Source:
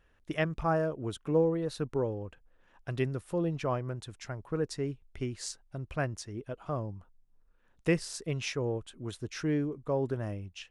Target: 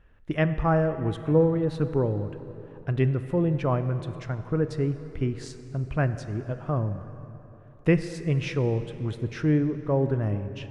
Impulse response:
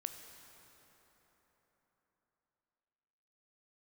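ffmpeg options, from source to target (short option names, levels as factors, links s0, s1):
-filter_complex "[0:a]bass=f=250:g=6,treble=f=4000:g=-13,asplit=2[s0][s1];[1:a]atrim=start_sample=2205,asetrate=52920,aresample=44100[s2];[s1][s2]afir=irnorm=-1:irlink=0,volume=2.24[s3];[s0][s3]amix=inputs=2:normalize=0,volume=0.708"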